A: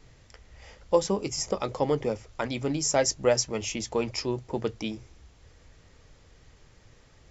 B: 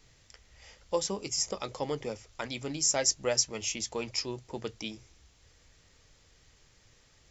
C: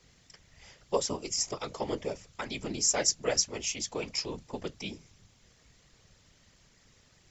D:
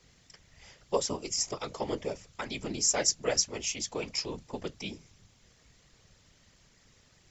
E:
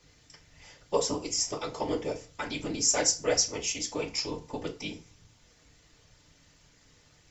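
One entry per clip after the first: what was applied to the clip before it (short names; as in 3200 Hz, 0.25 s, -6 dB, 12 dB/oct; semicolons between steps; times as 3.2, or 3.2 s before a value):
high shelf 2100 Hz +11 dB; gain -8.5 dB
whisperiser
nothing audible
FDN reverb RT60 0.34 s, low-frequency decay 0.85×, high-frequency decay 0.8×, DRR 2.5 dB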